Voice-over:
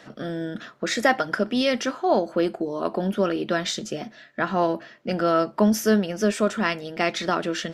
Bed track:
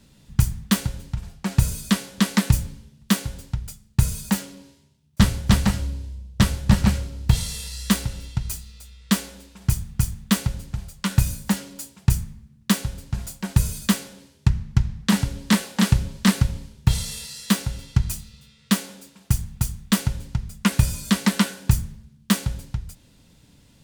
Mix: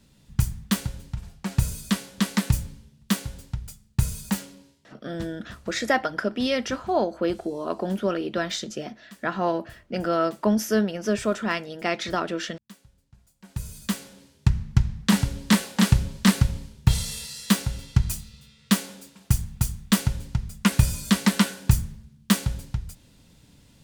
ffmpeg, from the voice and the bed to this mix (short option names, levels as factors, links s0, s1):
-filter_complex "[0:a]adelay=4850,volume=0.75[s0];[1:a]volume=14.1,afade=t=out:st=4.43:d=0.85:silence=0.0668344,afade=t=in:st=13.35:d=1.27:silence=0.0446684[s1];[s0][s1]amix=inputs=2:normalize=0"